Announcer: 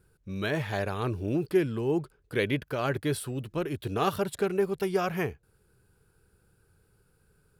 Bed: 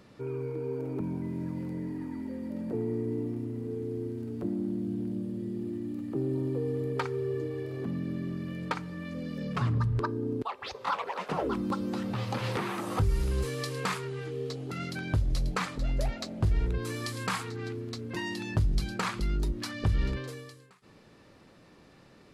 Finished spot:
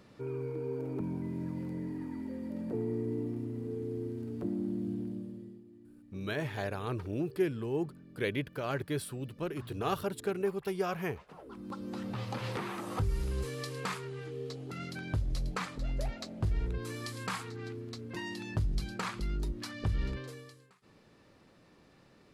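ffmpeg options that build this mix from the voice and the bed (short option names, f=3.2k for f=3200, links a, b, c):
-filter_complex "[0:a]adelay=5850,volume=-5.5dB[a];[1:a]volume=13dB,afade=t=out:st=4.89:d=0.74:silence=0.125893,afade=t=in:st=11.46:d=0.61:silence=0.16788[b];[a][b]amix=inputs=2:normalize=0"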